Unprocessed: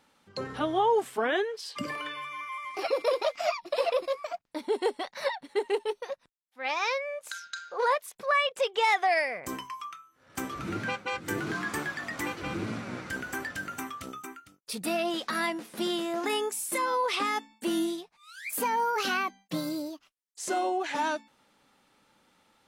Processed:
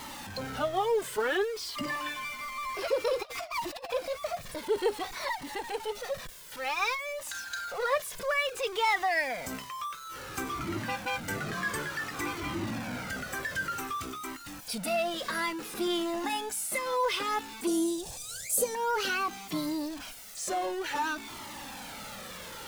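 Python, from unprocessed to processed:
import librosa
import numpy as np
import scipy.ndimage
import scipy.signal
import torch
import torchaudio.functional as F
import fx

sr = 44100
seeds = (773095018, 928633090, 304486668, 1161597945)

y = x + 0.5 * 10.0 ** (-34.0 / 20.0) * np.sign(x)
y = fx.over_compress(y, sr, threshold_db=-32.0, ratio=-0.5, at=(3.19, 3.89), fade=0.02)
y = fx.graphic_eq_10(y, sr, hz=(125, 250, 500, 1000, 2000, 8000), db=(9, -7, 11, -9, -12, 11), at=(17.67, 18.75))
y = fx.comb_cascade(y, sr, direction='falling', hz=0.56)
y = F.gain(torch.from_numpy(y), 1.5).numpy()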